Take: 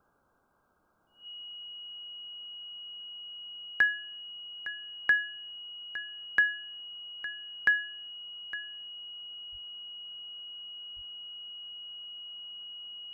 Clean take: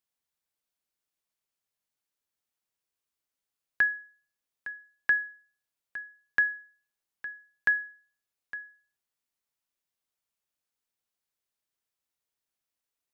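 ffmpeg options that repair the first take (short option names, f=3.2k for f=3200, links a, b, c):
-filter_complex "[0:a]bandreject=f=2.9k:w=30,asplit=3[a][b][c];[a]afade=t=out:st=9.51:d=0.02[d];[b]highpass=f=140:w=0.5412,highpass=f=140:w=1.3066,afade=t=in:st=9.51:d=0.02,afade=t=out:st=9.63:d=0.02[e];[c]afade=t=in:st=9.63:d=0.02[f];[d][e][f]amix=inputs=3:normalize=0,asplit=3[g][h][i];[g]afade=t=out:st=10.95:d=0.02[j];[h]highpass=f=140:w=0.5412,highpass=f=140:w=1.3066,afade=t=in:st=10.95:d=0.02,afade=t=out:st=11.07:d=0.02[k];[i]afade=t=in:st=11.07:d=0.02[l];[j][k][l]amix=inputs=3:normalize=0,afftdn=nr=30:nf=-44"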